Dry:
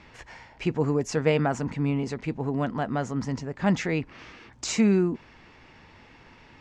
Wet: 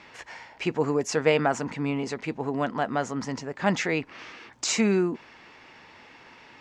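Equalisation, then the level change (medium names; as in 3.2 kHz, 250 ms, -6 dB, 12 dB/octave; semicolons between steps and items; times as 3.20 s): bass shelf 72 Hz -11.5 dB; bass shelf 240 Hz -10.5 dB; +4.0 dB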